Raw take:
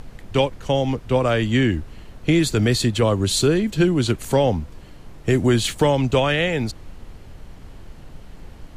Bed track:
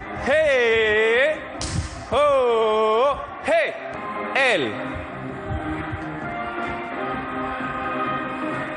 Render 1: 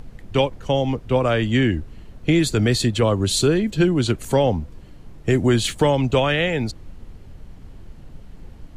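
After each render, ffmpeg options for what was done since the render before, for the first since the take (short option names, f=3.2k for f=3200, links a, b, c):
-af "afftdn=nr=6:nf=-42"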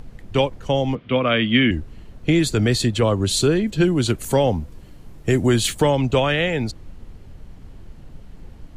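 -filter_complex "[0:a]asettb=1/sr,asplit=3[a][b][c];[a]atrim=end=0.954[d];[b]atrim=start=0.95:end=1.71,asetpts=PTS-STARTPTS,afade=t=in:d=0.004:c=qsin,afade=t=out:st=0.756:d=0.004:c=qsin,highpass=140,equalizer=f=230:t=q:w=4:g=5,equalizer=f=390:t=q:w=4:g=-4,equalizer=f=840:t=q:w=4:g=-7,equalizer=f=1.2k:t=q:w=4:g=4,equalizer=f=2.2k:t=q:w=4:g=8,equalizer=f=3.2k:t=q:w=4:g=9,lowpass=f=3.8k:w=0.5412,lowpass=f=3.8k:w=1.3066[e];[c]atrim=start=1.706[f];[d][e]acrossfade=d=0.004:c1=hsin:c2=qsin[g];[g][f]acrossfade=d=0.004:c1=qsin:c2=hsin,asettb=1/sr,asplit=3[h][i][j];[h]atrim=end=3.834[k];[i]atrim=start=3.83:end=5.82,asetpts=PTS-STARTPTS,afade=t=in:d=0.004:c=qsin,afade=t=out:st=1.986:d=0.004:c=qsin,highshelf=f=9.1k:g=9.5[l];[j]atrim=start=5.816[m];[k][l]acrossfade=d=0.004:c1=hsin:c2=qsin[n];[n][m]acrossfade=d=0.004:c1=qsin:c2=hsin"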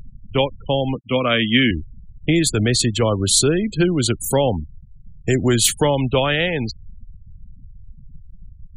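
-af "afftfilt=real='re*gte(hypot(re,im),0.0355)':imag='im*gte(hypot(re,im),0.0355)':win_size=1024:overlap=0.75,aemphasis=mode=production:type=50kf"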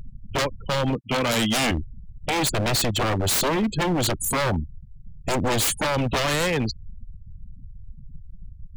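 -af "aeval=exprs='0.141*(abs(mod(val(0)/0.141+3,4)-2)-1)':c=same"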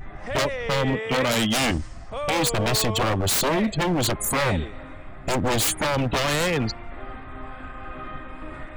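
-filter_complex "[1:a]volume=-12.5dB[a];[0:a][a]amix=inputs=2:normalize=0"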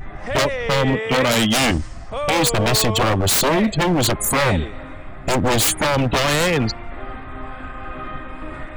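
-af "volume=5dB"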